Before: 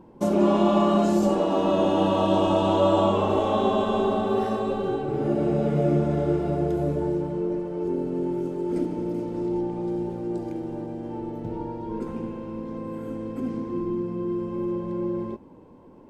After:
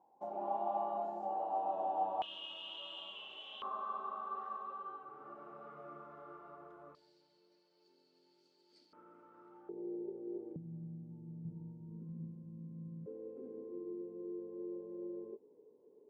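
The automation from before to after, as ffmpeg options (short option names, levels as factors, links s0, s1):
-af "asetnsamples=n=441:p=0,asendcmd='2.22 bandpass f 3000;3.62 bandpass f 1200;6.95 bandpass f 4500;8.93 bandpass f 1300;9.69 bandpass f 410;10.56 bandpass f 160;13.06 bandpass f 430',bandpass=f=780:t=q:w=15:csg=0"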